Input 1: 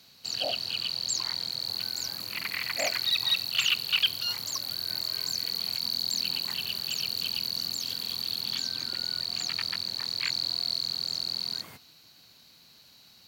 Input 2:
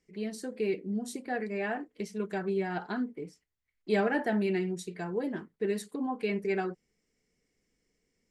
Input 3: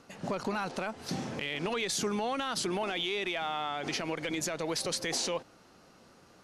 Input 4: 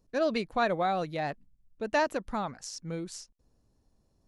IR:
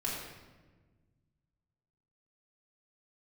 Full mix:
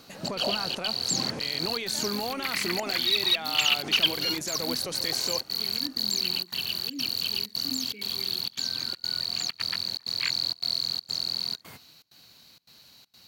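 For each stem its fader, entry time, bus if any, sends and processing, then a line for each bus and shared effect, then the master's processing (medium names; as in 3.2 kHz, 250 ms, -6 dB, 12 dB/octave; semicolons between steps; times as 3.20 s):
+2.0 dB, 0.00 s, no send, bit crusher 12-bit; trance gate "xxx.xxxx.xx" 161 bpm -24 dB
-1.5 dB, 1.70 s, no send, vowel filter i
+2.5 dB, 0.00 s, no send, treble shelf 11 kHz +11.5 dB; peak limiter -27 dBFS, peak gain reduction 9.5 dB
-20.0 dB, 0.00 s, no send, none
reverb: none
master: none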